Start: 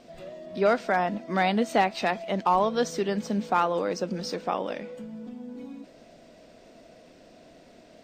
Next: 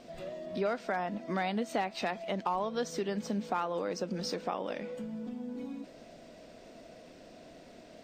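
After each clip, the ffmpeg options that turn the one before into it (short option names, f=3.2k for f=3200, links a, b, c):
-af "acompressor=threshold=-33dB:ratio=2.5"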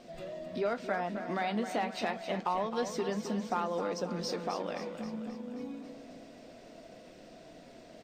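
-af "flanger=delay=5.5:depth=8.6:regen=-61:speed=0.28:shape=sinusoidal,aecho=1:1:265|530|795|1060|1325|1590|1855:0.335|0.191|0.109|0.062|0.0354|0.0202|0.0115,volume=3.5dB"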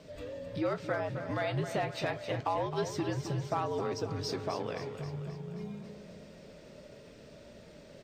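-af "afreqshift=-73"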